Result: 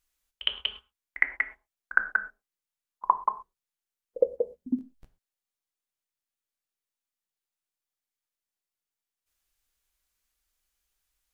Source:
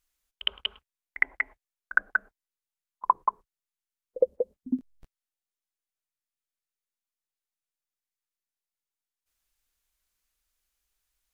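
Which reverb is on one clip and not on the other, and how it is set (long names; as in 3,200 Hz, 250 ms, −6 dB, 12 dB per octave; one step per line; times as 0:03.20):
reverb whose tail is shaped and stops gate 150 ms falling, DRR 9.5 dB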